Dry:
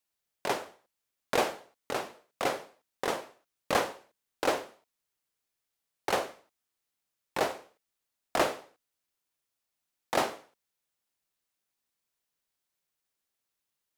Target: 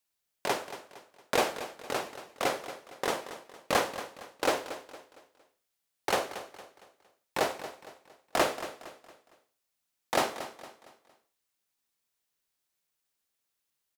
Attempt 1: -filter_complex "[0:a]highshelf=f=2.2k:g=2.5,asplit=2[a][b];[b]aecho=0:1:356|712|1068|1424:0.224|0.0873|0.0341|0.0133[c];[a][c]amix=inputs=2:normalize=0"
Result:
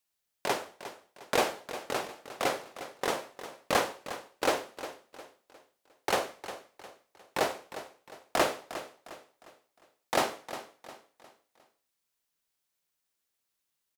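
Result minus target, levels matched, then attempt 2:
echo 0.126 s late
-filter_complex "[0:a]highshelf=f=2.2k:g=2.5,asplit=2[a][b];[b]aecho=0:1:230|460|690|920:0.224|0.0873|0.0341|0.0133[c];[a][c]amix=inputs=2:normalize=0"

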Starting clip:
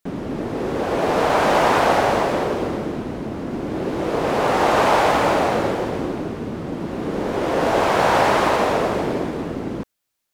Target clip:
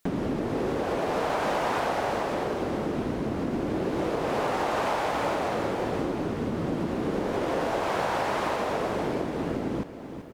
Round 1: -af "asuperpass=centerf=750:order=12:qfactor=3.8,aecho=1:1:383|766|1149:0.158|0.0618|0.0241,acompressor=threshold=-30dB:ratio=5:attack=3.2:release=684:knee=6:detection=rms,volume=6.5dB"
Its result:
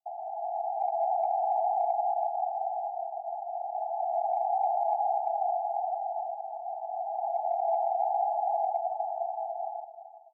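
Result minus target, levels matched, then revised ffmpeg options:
1000 Hz band +5.0 dB
-af "aecho=1:1:383|766|1149:0.158|0.0618|0.0241,acompressor=threshold=-30dB:ratio=5:attack=3.2:release=684:knee=6:detection=rms,volume=6.5dB"

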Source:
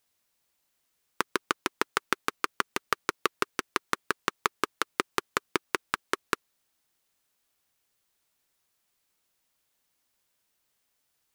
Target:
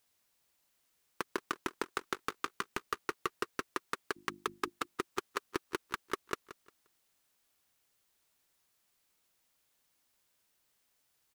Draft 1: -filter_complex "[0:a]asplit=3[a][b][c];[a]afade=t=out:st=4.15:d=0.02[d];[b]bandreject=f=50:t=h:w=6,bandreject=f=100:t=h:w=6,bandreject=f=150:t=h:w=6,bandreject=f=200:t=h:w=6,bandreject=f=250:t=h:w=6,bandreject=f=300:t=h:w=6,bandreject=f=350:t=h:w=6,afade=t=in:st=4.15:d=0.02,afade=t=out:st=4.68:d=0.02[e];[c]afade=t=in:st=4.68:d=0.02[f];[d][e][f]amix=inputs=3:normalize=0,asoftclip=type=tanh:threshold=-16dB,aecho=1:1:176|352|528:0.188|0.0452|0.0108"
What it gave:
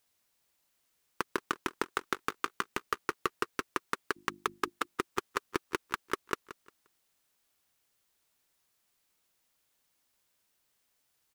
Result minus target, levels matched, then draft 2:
soft clip: distortion -4 dB
-filter_complex "[0:a]asplit=3[a][b][c];[a]afade=t=out:st=4.15:d=0.02[d];[b]bandreject=f=50:t=h:w=6,bandreject=f=100:t=h:w=6,bandreject=f=150:t=h:w=6,bandreject=f=200:t=h:w=6,bandreject=f=250:t=h:w=6,bandreject=f=300:t=h:w=6,bandreject=f=350:t=h:w=6,afade=t=in:st=4.15:d=0.02,afade=t=out:st=4.68:d=0.02[e];[c]afade=t=in:st=4.68:d=0.02[f];[d][e][f]amix=inputs=3:normalize=0,asoftclip=type=tanh:threshold=-22.5dB,aecho=1:1:176|352|528:0.188|0.0452|0.0108"

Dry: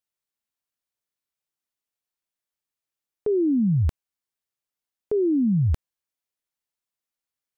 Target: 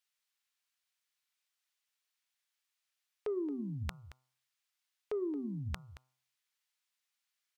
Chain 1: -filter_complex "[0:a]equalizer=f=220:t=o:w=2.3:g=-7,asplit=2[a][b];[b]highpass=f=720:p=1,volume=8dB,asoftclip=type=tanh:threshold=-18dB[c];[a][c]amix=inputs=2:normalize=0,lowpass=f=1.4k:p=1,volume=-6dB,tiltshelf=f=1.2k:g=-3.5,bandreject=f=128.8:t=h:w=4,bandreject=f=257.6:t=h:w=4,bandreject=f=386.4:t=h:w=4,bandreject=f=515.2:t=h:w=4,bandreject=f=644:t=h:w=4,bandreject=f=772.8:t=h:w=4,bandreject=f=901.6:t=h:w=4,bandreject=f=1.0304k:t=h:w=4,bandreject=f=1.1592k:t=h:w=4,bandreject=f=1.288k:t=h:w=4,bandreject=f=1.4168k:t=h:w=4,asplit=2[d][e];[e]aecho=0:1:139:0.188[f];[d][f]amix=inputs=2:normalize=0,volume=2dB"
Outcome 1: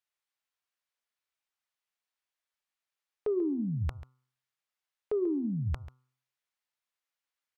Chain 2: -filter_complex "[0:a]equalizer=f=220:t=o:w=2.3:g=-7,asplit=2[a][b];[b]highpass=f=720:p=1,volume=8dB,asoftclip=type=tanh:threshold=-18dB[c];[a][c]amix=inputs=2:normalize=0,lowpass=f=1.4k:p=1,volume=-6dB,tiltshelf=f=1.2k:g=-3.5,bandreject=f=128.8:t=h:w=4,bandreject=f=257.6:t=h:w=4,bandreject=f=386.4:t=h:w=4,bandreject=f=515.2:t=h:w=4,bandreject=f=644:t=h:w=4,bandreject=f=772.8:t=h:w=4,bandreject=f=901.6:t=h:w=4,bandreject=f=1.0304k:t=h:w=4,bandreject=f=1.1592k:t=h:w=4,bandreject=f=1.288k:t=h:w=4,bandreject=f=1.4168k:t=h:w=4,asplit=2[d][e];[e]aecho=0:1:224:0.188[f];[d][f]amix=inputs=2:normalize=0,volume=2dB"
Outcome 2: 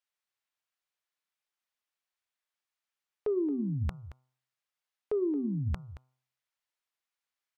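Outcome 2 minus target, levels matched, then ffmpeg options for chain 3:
1000 Hz band -5.5 dB
-filter_complex "[0:a]equalizer=f=220:t=o:w=2.3:g=-7,asplit=2[a][b];[b]highpass=f=720:p=1,volume=8dB,asoftclip=type=tanh:threshold=-18dB[c];[a][c]amix=inputs=2:normalize=0,lowpass=f=1.4k:p=1,volume=-6dB,tiltshelf=f=1.2k:g=-11.5,bandreject=f=128.8:t=h:w=4,bandreject=f=257.6:t=h:w=4,bandreject=f=386.4:t=h:w=4,bandreject=f=515.2:t=h:w=4,bandreject=f=644:t=h:w=4,bandreject=f=772.8:t=h:w=4,bandreject=f=901.6:t=h:w=4,bandreject=f=1.0304k:t=h:w=4,bandreject=f=1.1592k:t=h:w=4,bandreject=f=1.288k:t=h:w=4,bandreject=f=1.4168k:t=h:w=4,asplit=2[d][e];[e]aecho=0:1:224:0.188[f];[d][f]amix=inputs=2:normalize=0,volume=2dB"

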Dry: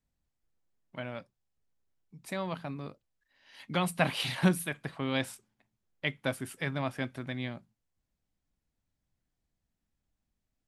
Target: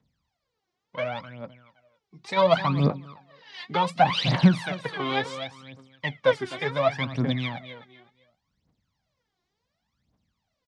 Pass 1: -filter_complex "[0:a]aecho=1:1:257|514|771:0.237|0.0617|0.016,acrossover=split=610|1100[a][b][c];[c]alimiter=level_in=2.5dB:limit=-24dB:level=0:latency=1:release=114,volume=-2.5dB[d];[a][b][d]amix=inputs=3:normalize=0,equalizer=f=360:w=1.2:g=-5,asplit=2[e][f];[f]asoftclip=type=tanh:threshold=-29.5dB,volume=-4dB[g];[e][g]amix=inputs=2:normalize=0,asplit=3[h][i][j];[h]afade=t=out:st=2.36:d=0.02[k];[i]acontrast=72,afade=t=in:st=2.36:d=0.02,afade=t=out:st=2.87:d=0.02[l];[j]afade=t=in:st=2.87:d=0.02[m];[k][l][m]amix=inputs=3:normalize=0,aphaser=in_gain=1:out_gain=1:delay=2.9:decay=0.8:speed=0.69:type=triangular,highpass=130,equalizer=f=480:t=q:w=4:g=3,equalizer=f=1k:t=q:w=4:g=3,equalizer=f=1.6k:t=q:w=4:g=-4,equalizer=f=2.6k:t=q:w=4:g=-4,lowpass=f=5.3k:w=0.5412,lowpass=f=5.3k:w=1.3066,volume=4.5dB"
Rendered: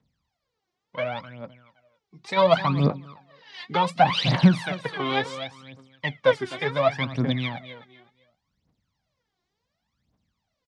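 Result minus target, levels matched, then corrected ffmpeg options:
soft clip: distortion -5 dB
-filter_complex "[0:a]aecho=1:1:257|514|771:0.237|0.0617|0.016,acrossover=split=610|1100[a][b][c];[c]alimiter=level_in=2.5dB:limit=-24dB:level=0:latency=1:release=114,volume=-2.5dB[d];[a][b][d]amix=inputs=3:normalize=0,equalizer=f=360:w=1.2:g=-5,asplit=2[e][f];[f]asoftclip=type=tanh:threshold=-39dB,volume=-4dB[g];[e][g]amix=inputs=2:normalize=0,asplit=3[h][i][j];[h]afade=t=out:st=2.36:d=0.02[k];[i]acontrast=72,afade=t=in:st=2.36:d=0.02,afade=t=out:st=2.87:d=0.02[l];[j]afade=t=in:st=2.87:d=0.02[m];[k][l][m]amix=inputs=3:normalize=0,aphaser=in_gain=1:out_gain=1:delay=2.9:decay=0.8:speed=0.69:type=triangular,highpass=130,equalizer=f=480:t=q:w=4:g=3,equalizer=f=1k:t=q:w=4:g=3,equalizer=f=1.6k:t=q:w=4:g=-4,equalizer=f=2.6k:t=q:w=4:g=-4,lowpass=f=5.3k:w=0.5412,lowpass=f=5.3k:w=1.3066,volume=4.5dB"

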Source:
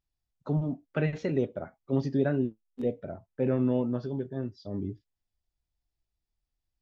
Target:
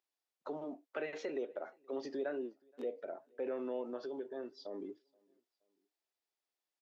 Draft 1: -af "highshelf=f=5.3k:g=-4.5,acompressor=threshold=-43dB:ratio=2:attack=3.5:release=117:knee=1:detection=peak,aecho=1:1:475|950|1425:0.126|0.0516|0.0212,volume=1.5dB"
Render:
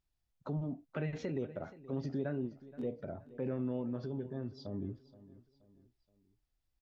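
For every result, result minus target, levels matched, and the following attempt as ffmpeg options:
echo-to-direct +12 dB; 500 Hz band -4.0 dB
-af "highshelf=f=5.3k:g=-4.5,acompressor=threshold=-43dB:ratio=2:attack=3.5:release=117:knee=1:detection=peak,aecho=1:1:475|950:0.0316|0.013,volume=1.5dB"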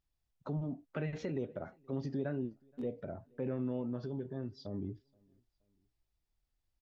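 500 Hz band -4.0 dB
-af "highpass=f=360:w=0.5412,highpass=f=360:w=1.3066,highshelf=f=5.3k:g=-4.5,acompressor=threshold=-43dB:ratio=2:attack=3.5:release=117:knee=1:detection=peak,aecho=1:1:475|950:0.0316|0.013,volume=1.5dB"

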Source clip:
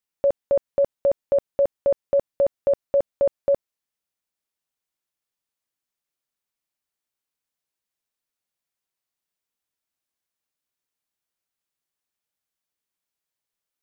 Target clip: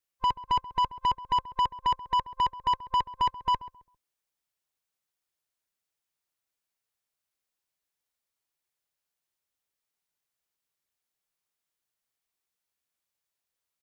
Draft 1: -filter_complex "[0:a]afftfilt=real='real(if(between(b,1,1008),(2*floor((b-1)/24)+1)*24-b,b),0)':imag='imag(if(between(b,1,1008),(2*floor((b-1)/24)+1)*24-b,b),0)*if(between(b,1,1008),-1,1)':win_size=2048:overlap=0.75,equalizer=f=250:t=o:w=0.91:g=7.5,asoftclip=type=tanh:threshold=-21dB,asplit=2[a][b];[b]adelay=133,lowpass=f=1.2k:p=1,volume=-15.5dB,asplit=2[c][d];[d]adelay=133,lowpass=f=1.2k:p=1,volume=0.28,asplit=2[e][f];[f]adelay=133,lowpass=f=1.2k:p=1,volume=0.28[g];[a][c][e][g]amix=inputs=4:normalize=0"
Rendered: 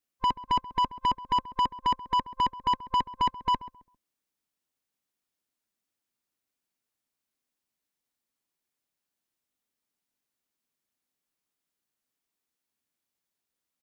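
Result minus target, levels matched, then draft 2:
250 Hz band +8.0 dB
-filter_complex "[0:a]afftfilt=real='real(if(between(b,1,1008),(2*floor((b-1)/24)+1)*24-b,b),0)':imag='imag(if(between(b,1,1008),(2*floor((b-1)/24)+1)*24-b,b),0)*if(between(b,1,1008),-1,1)':win_size=2048:overlap=0.75,equalizer=f=250:t=o:w=0.91:g=-4,asoftclip=type=tanh:threshold=-21dB,asplit=2[a][b];[b]adelay=133,lowpass=f=1.2k:p=1,volume=-15.5dB,asplit=2[c][d];[d]adelay=133,lowpass=f=1.2k:p=1,volume=0.28,asplit=2[e][f];[f]adelay=133,lowpass=f=1.2k:p=1,volume=0.28[g];[a][c][e][g]amix=inputs=4:normalize=0"

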